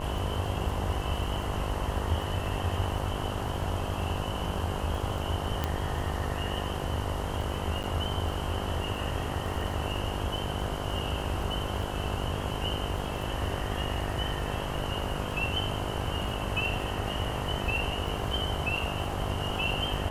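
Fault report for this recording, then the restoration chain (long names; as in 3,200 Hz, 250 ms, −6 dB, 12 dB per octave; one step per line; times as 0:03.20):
mains buzz 50 Hz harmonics 21 −36 dBFS
surface crackle 21 per second −36 dBFS
0:05.64: click −14 dBFS
0:07.83–0:07.84: drop-out 9 ms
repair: click removal
hum removal 50 Hz, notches 21
repair the gap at 0:07.83, 9 ms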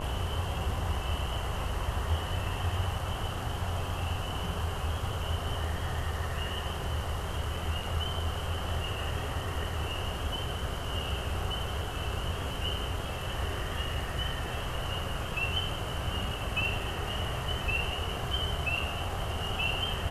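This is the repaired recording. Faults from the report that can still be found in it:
none of them is left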